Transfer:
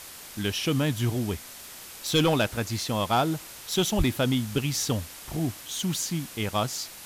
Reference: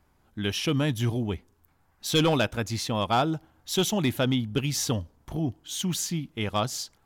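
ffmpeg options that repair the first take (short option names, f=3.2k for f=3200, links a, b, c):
-filter_complex "[0:a]asplit=3[a][b][c];[a]afade=t=out:st=3.97:d=0.02[d];[b]highpass=f=140:w=0.5412,highpass=f=140:w=1.3066,afade=t=in:st=3.97:d=0.02,afade=t=out:st=4.09:d=0.02[e];[c]afade=t=in:st=4.09:d=0.02[f];[d][e][f]amix=inputs=3:normalize=0,afwtdn=0.0079"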